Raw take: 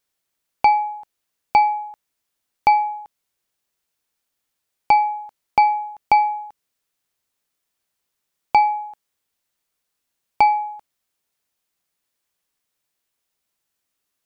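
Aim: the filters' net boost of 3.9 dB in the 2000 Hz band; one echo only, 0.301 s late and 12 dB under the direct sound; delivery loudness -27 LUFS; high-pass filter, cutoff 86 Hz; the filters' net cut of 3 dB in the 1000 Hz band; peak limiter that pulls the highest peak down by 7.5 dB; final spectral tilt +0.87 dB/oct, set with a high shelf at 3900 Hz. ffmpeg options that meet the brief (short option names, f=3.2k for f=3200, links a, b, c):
-af "highpass=86,equalizer=f=1k:t=o:g=-4.5,equalizer=f=2k:t=o:g=7,highshelf=f=3.9k:g=-5.5,alimiter=limit=-12.5dB:level=0:latency=1,aecho=1:1:301:0.251,volume=-2dB"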